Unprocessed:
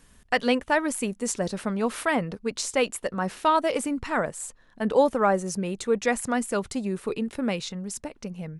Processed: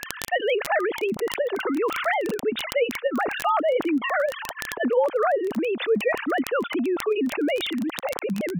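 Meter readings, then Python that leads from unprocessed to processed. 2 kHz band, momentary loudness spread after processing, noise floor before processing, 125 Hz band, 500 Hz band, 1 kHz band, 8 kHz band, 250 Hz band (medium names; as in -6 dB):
+3.5 dB, 5 LU, -57 dBFS, no reading, +3.5 dB, +0.5 dB, -7.0 dB, +1.0 dB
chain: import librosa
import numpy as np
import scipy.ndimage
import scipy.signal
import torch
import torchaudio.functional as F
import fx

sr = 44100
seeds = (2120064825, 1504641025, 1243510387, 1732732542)

y = fx.sine_speech(x, sr)
y = fx.dmg_crackle(y, sr, seeds[0], per_s=20.0, level_db=-33.0)
y = fx.env_flatten(y, sr, amount_pct=70)
y = y * librosa.db_to_amplitude(-7.5)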